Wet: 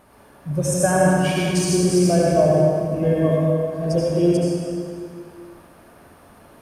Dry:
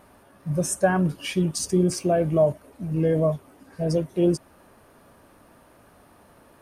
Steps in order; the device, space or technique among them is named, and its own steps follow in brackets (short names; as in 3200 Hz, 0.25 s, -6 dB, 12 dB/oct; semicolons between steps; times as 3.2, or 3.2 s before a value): stairwell (reverb RT60 2.3 s, pre-delay 69 ms, DRR -5 dB)